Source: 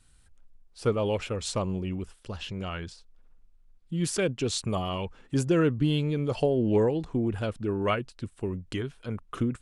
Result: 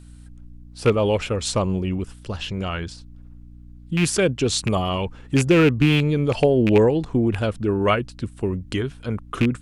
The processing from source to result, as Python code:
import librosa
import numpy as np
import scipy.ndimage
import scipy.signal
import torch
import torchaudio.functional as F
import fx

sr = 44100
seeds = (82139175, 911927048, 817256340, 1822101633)

y = fx.rattle_buzz(x, sr, strikes_db=-27.0, level_db=-21.0)
y = fx.add_hum(y, sr, base_hz=60, snr_db=22)
y = y * librosa.db_to_amplitude(7.5)